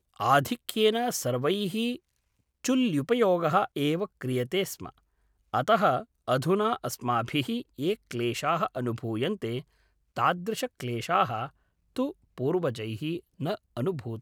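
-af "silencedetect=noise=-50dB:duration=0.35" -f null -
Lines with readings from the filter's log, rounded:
silence_start: 1.98
silence_end: 2.65 | silence_duration: 0.67
silence_start: 4.98
silence_end: 5.53 | silence_duration: 0.55
silence_start: 9.62
silence_end: 10.16 | silence_duration: 0.54
silence_start: 11.50
silence_end: 11.96 | silence_duration: 0.46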